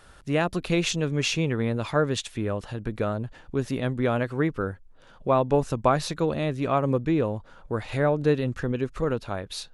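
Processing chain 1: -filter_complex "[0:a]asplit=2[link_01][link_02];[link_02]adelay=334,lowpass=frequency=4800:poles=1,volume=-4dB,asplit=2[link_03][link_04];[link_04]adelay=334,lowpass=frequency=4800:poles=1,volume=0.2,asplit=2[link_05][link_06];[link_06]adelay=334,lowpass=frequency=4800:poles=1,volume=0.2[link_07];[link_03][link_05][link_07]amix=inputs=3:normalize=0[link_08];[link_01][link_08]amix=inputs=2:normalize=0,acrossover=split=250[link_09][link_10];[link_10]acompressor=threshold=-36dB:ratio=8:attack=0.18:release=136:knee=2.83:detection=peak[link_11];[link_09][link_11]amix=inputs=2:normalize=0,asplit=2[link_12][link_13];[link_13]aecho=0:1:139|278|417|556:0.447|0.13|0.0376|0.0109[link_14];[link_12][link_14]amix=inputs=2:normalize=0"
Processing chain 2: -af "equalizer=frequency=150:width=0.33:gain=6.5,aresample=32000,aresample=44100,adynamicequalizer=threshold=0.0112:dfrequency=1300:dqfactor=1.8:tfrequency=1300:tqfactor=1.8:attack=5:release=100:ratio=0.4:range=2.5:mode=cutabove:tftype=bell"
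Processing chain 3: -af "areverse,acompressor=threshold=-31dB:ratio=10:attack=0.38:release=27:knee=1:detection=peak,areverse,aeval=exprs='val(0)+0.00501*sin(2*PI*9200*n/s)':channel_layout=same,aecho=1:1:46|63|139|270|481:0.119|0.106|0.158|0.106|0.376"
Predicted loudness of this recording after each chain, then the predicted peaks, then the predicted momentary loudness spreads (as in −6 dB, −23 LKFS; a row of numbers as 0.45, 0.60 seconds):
−30.0, −22.5, −36.0 LKFS; −15.5, −5.5, −23.5 dBFS; 5, 9, 4 LU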